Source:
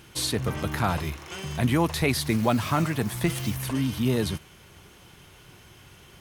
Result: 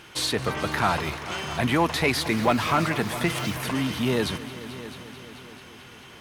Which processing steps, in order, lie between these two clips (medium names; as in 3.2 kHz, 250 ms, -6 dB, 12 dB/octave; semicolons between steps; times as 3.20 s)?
overdrive pedal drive 13 dB, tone 3 kHz, clips at -10 dBFS; multi-head delay 219 ms, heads all three, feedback 56%, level -18 dB